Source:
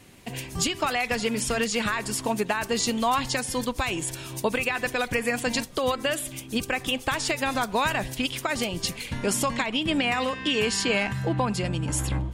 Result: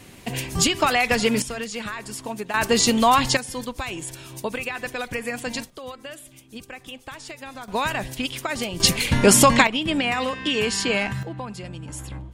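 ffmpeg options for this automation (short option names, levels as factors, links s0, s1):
-af "asetnsamples=n=441:p=0,asendcmd='1.42 volume volume -5dB;2.54 volume volume 7dB;3.37 volume volume -3dB;5.7 volume volume -11.5dB;7.68 volume volume 0dB;8.8 volume volume 11.5dB;9.67 volume volume 1.5dB;11.23 volume volume -8dB',volume=2"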